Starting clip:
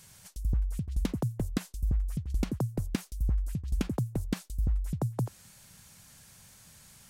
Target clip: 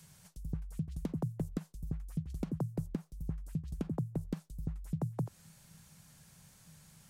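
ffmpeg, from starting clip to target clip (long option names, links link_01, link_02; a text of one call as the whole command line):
ffmpeg -i in.wav -filter_complex "[0:a]equalizer=frequency=160:width_type=o:width=0.24:gain=12,acrossover=split=87|1300[link_01][link_02][link_03];[link_01]acompressor=threshold=-42dB:ratio=4[link_04];[link_02]acompressor=threshold=-28dB:ratio=4[link_05];[link_03]acompressor=threshold=-56dB:ratio=4[link_06];[link_04][link_05][link_06]amix=inputs=3:normalize=0,asettb=1/sr,asplit=3[link_07][link_08][link_09];[link_07]atrim=end=2.924[link_10];[link_08]atrim=start=2.92:end=4.25,asetpts=PTS-STARTPTS,afade=type=in:duration=0.004:curve=qsin,afade=type=out:start_time=1.326:duration=0.004:curve=qsin,adynamicequalizer=threshold=0.00141:dfrequency=1700:dqfactor=0.7:tfrequency=1700:tqfactor=0.7:attack=5:release=100:ratio=0.375:range=3:mode=cutabove:tftype=highshelf[link_11];[link_09]atrim=start=4.246[link_12];[link_10][link_11]acrossfade=duration=0.004:curve1=hsin:curve2=qsin[link_13];[link_13][link_12]acrossfade=duration=0.004:curve1=qsin:curve2=hsin,volume=-4dB" out.wav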